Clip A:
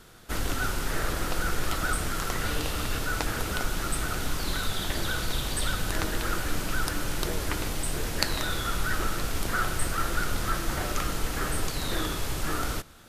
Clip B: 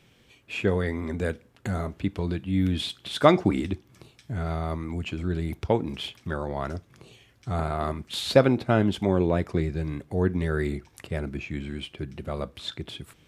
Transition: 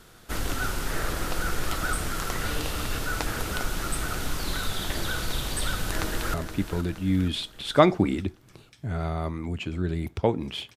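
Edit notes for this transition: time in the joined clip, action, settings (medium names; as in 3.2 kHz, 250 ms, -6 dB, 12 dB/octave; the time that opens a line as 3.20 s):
clip A
5.86–6.34 s: echo throw 470 ms, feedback 50%, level -10 dB
6.34 s: go over to clip B from 1.80 s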